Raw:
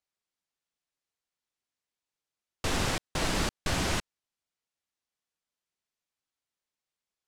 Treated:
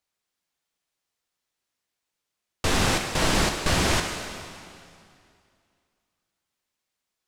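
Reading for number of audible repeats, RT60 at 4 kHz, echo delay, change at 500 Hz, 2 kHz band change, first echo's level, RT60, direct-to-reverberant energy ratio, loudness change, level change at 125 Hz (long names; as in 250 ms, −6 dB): no echo audible, 2.2 s, no echo audible, +7.5 dB, +7.5 dB, no echo audible, 2.4 s, 3.5 dB, +7.0 dB, +6.5 dB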